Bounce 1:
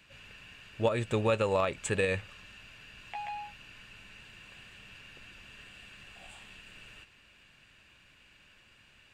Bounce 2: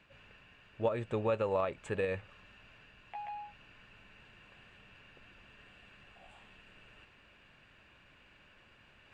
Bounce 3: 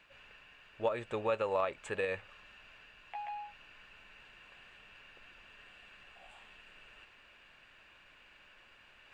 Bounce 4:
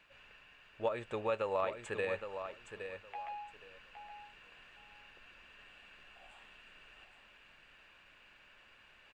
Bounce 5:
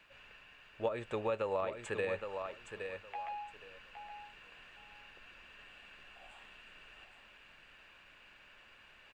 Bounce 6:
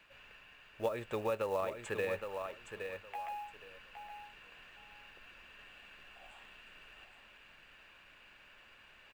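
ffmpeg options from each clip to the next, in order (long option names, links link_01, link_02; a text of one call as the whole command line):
ffmpeg -i in.wav -af "lowpass=frequency=2000:poles=1,equalizer=frequency=710:width=0.5:gain=4.5,areverse,acompressor=mode=upward:threshold=-46dB:ratio=2.5,areverse,volume=-7dB" out.wav
ffmpeg -i in.wav -af "equalizer=frequency=120:width=0.35:gain=-12,volume=3dB" out.wav
ffmpeg -i in.wav -af "aecho=1:1:816|1632|2448:0.376|0.0714|0.0136,volume=-2dB" out.wav
ffmpeg -i in.wav -filter_complex "[0:a]acrossover=split=490[link_01][link_02];[link_02]acompressor=threshold=-39dB:ratio=2.5[link_03];[link_01][link_03]amix=inputs=2:normalize=0,volume=2dB" out.wav
ffmpeg -i in.wav -af "acrusher=bits=6:mode=log:mix=0:aa=0.000001" out.wav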